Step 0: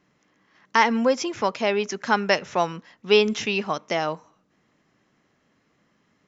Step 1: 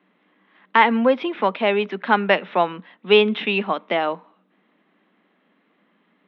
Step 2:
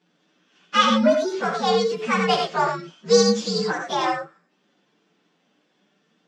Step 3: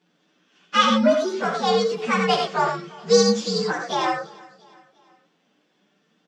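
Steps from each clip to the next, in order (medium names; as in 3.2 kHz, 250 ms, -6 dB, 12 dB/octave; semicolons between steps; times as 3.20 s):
Chebyshev band-pass 180–3700 Hz, order 5; trim +4 dB
frequency axis rescaled in octaves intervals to 124%; gated-style reverb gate 120 ms rising, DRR 2.5 dB
feedback delay 345 ms, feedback 50%, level -22.5 dB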